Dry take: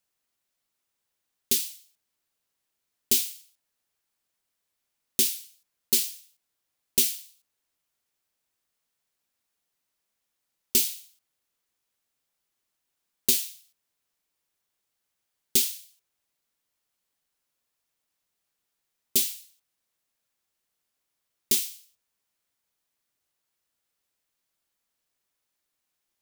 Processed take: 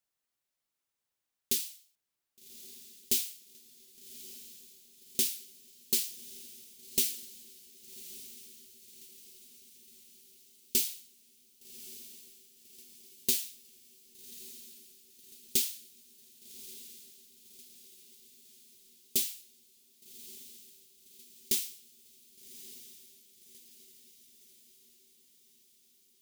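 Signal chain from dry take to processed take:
feedback delay with all-pass diffusion 1,171 ms, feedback 56%, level −14.5 dB
level −6 dB

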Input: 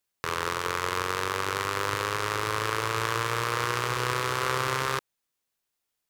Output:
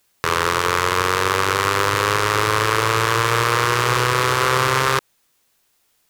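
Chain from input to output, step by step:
boost into a limiter +19 dB
level −1 dB

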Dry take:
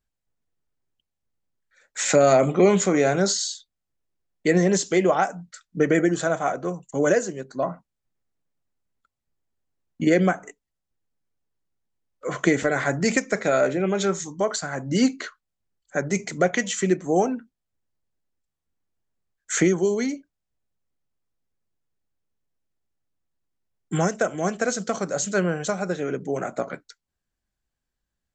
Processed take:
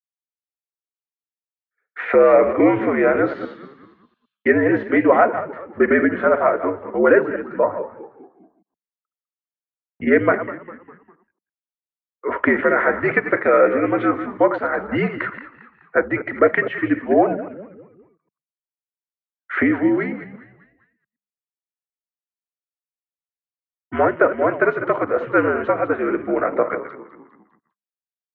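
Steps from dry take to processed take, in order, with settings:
delay that plays each chunk backwards 115 ms, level −11.5 dB
downward expander −44 dBFS
parametric band 250 Hz −11.5 dB 0.93 octaves
automatic gain control
echo with shifted repeats 201 ms, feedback 47%, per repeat −70 Hz, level −15 dB
single-sideband voice off tune −73 Hz 260–2,300 Hz

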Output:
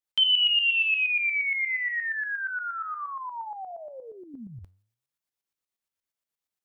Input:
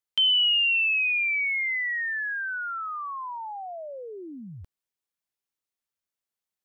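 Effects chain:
0:03.71–0:04.34: low-shelf EQ 380 Hz −9 dB
shaped tremolo saw up 8.5 Hz, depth 65%
flanger 0.96 Hz, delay 5.8 ms, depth 5.4 ms, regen +88%
level +7 dB

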